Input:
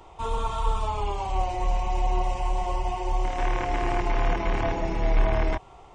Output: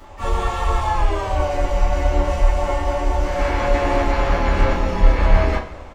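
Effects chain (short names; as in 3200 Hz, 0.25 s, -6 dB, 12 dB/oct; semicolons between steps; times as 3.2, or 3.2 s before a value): harmoniser -4 st -2 dB, +4 st -9 dB, +12 st -13 dB; two-slope reverb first 0.28 s, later 1.8 s, from -19 dB, DRR -8 dB; gain -3.5 dB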